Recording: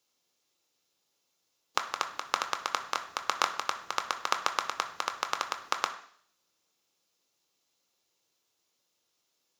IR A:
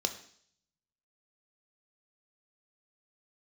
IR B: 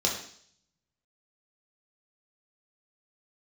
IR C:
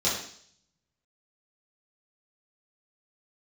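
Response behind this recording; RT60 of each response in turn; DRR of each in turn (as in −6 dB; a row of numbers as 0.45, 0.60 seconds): A; 0.60, 0.60, 0.60 seconds; 6.5, −2.0, −9.5 decibels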